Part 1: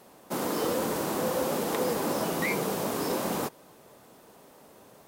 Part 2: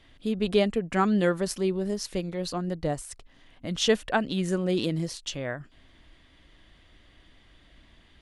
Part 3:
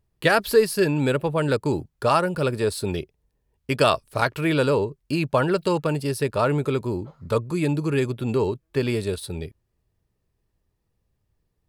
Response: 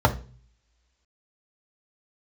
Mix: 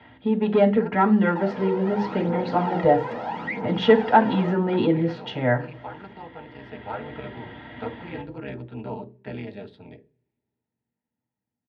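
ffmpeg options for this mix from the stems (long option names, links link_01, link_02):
-filter_complex "[0:a]aphaser=in_gain=1:out_gain=1:delay=2.2:decay=0.68:speed=0.77:type=triangular,asoftclip=type=tanh:threshold=-17.5dB,alimiter=level_in=1dB:limit=-24dB:level=0:latency=1:release=189,volume=-1dB,adelay=1050,volume=0.5dB,asplit=2[link_01][link_02];[link_02]volume=-14.5dB[link_03];[1:a]asoftclip=type=tanh:threshold=-16.5dB,volume=-0.5dB,asplit=2[link_04][link_05];[link_05]volume=-3.5dB[link_06];[2:a]tremolo=f=200:d=1,adelay=500,volume=-15dB,asplit=2[link_07][link_08];[link_08]volume=-17dB[link_09];[3:a]atrim=start_sample=2205[link_10];[link_03][link_06][link_09]amix=inputs=3:normalize=0[link_11];[link_11][link_10]afir=irnorm=-1:irlink=0[link_12];[link_01][link_04][link_07][link_12]amix=inputs=4:normalize=0,dynaudnorm=framelen=290:gausssize=7:maxgain=7dB,highpass=280,equalizer=frequency=280:width_type=q:width=4:gain=4,equalizer=frequency=610:width_type=q:width=4:gain=-7,equalizer=frequency=1200:width_type=q:width=4:gain=-6,equalizer=frequency=1900:width_type=q:width=4:gain=4,lowpass=frequency=3300:width=0.5412,lowpass=frequency=3300:width=1.3066"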